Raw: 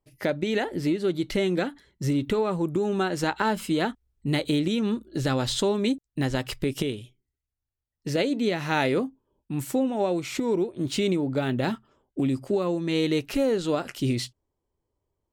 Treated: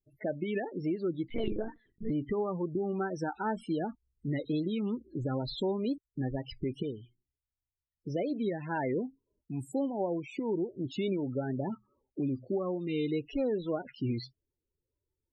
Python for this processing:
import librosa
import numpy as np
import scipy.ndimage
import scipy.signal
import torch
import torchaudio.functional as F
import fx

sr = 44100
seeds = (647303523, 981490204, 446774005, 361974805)

y = fx.spec_topn(x, sr, count=16)
y = fx.lpc_monotone(y, sr, seeds[0], pitch_hz=220.0, order=10, at=(1.28, 2.1))
y = fx.wow_flutter(y, sr, seeds[1], rate_hz=2.1, depth_cents=86.0)
y = y * 10.0 ** (-7.0 / 20.0)